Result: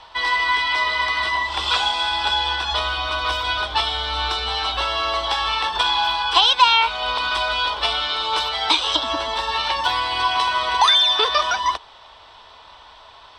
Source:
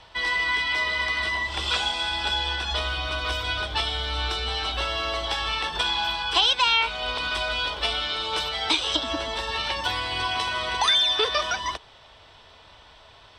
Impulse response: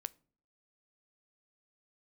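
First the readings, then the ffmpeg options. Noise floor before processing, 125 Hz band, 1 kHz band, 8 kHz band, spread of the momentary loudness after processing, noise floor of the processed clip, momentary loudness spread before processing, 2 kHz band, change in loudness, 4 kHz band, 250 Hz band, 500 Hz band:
−51 dBFS, can't be measured, +9.0 dB, +2.0 dB, 8 LU, −46 dBFS, 7 LU, +3.5 dB, +5.0 dB, +4.5 dB, −0.5 dB, +3.0 dB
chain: -af "equalizer=frequency=125:width_type=o:width=1:gain=-7,equalizer=frequency=1000:width_type=o:width=1:gain=10,equalizer=frequency=4000:width_type=o:width=1:gain=5"

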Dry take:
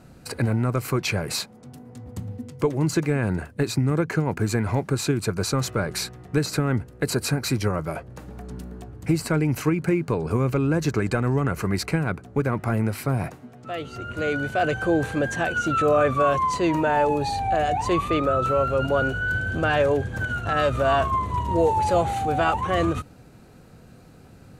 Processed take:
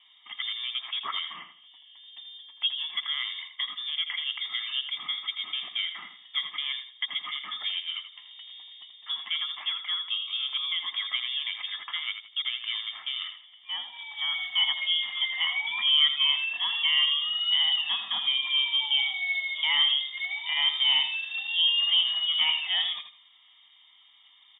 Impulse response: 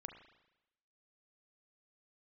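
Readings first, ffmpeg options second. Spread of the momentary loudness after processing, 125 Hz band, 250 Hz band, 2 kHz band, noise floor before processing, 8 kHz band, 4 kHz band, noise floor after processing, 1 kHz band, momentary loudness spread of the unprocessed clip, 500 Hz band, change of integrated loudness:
13 LU, below −40 dB, below −40 dB, −2.5 dB, −49 dBFS, below −40 dB, +14.5 dB, −58 dBFS, −18.0 dB, 12 LU, below −35 dB, −2.5 dB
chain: -af "lowpass=frequency=3100:width_type=q:width=0.5098,lowpass=frequency=3100:width_type=q:width=0.6013,lowpass=frequency=3100:width_type=q:width=0.9,lowpass=frequency=3100:width_type=q:width=2.563,afreqshift=-3700,highpass=frequency=180:width=0.5412,highpass=frequency=180:width=1.3066,aecho=1:1:1:0.91,aecho=1:1:82|164|246:0.335|0.0871|0.0226,volume=-7.5dB"

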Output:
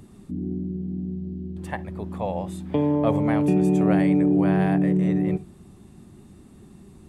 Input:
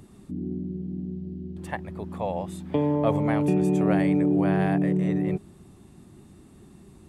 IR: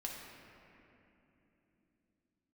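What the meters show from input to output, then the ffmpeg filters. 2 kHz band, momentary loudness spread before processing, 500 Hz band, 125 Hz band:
+0.5 dB, 13 LU, +1.0 dB, +2.5 dB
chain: -filter_complex "[0:a]asplit=2[link_01][link_02];[1:a]atrim=start_sample=2205,atrim=end_sample=3528,lowshelf=frequency=340:gain=11[link_03];[link_02][link_03]afir=irnorm=-1:irlink=0,volume=-9.5dB[link_04];[link_01][link_04]amix=inputs=2:normalize=0,volume=-1dB"

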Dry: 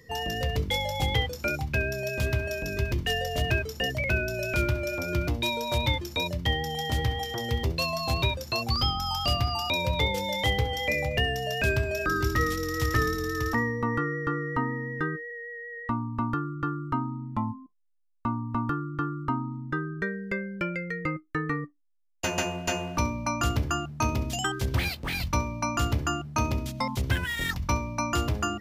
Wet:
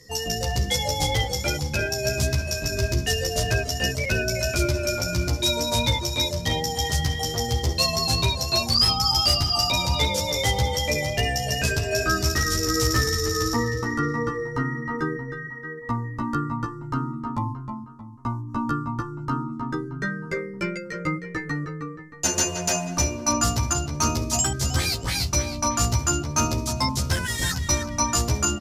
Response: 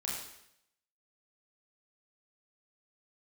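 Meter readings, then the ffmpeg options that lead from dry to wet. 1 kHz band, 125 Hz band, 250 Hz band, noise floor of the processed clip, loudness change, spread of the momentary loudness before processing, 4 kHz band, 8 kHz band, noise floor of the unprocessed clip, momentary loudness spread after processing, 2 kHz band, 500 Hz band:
+2.5 dB, +3.5 dB, +3.0 dB, −36 dBFS, +4.5 dB, 6 LU, +7.5 dB, +14.5 dB, −46 dBFS, 9 LU, +1.5 dB, +3.0 dB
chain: -filter_complex "[0:a]highshelf=frequency=4000:width_type=q:width=1.5:gain=10.5,asplit=2[link_01][link_02];[link_02]adelay=313,lowpass=frequency=3900:poles=1,volume=-7dB,asplit=2[link_03][link_04];[link_04]adelay=313,lowpass=frequency=3900:poles=1,volume=0.42,asplit=2[link_05][link_06];[link_06]adelay=313,lowpass=frequency=3900:poles=1,volume=0.42,asplit=2[link_07][link_08];[link_08]adelay=313,lowpass=frequency=3900:poles=1,volume=0.42,asplit=2[link_09][link_10];[link_10]adelay=313,lowpass=frequency=3900:poles=1,volume=0.42[link_11];[link_01][link_03][link_05][link_07][link_09][link_11]amix=inputs=6:normalize=0,asplit=2[link_12][link_13];[link_13]aeval=exprs='(mod(5.01*val(0)+1,2)-1)/5.01':channel_layout=same,volume=-8dB[link_14];[link_12][link_14]amix=inputs=2:normalize=0,lowpass=11000,asplit=2[link_15][link_16];[link_16]adelay=11.8,afreqshift=1.3[link_17];[link_15][link_17]amix=inputs=2:normalize=1,volume=2.5dB"

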